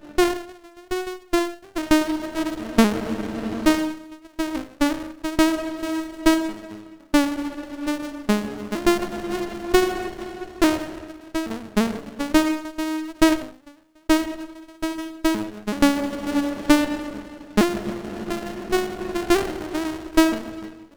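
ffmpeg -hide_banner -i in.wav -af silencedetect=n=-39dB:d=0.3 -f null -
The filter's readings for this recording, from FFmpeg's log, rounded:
silence_start: 13.71
silence_end: 14.09 | silence_duration: 0.39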